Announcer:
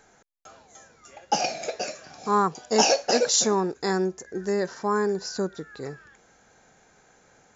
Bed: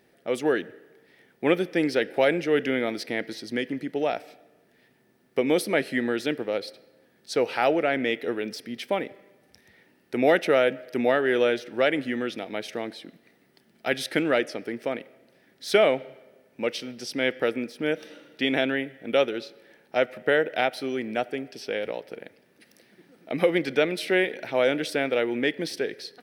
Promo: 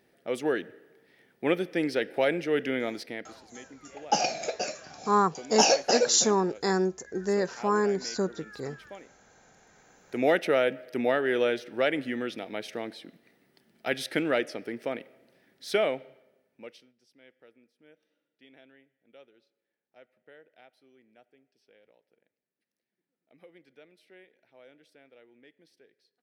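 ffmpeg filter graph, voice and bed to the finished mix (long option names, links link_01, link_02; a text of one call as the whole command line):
ffmpeg -i stem1.wav -i stem2.wav -filter_complex "[0:a]adelay=2800,volume=-1dB[link_01];[1:a]volume=11.5dB,afade=type=out:start_time=2.88:duration=0.53:silence=0.177828,afade=type=in:start_time=9.63:duration=0.63:silence=0.16788,afade=type=out:start_time=15.33:duration=1.6:silence=0.0375837[link_02];[link_01][link_02]amix=inputs=2:normalize=0" out.wav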